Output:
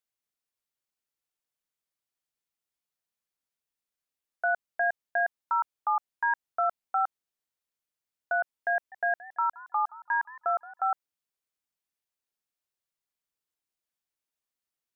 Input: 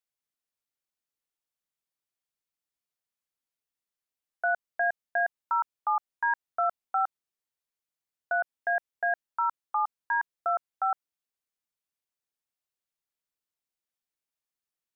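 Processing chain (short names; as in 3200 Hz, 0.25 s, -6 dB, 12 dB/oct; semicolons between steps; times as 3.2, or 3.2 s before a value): 8.75–10.92 warbling echo 0.167 s, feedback 35%, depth 165 cents, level -19 dB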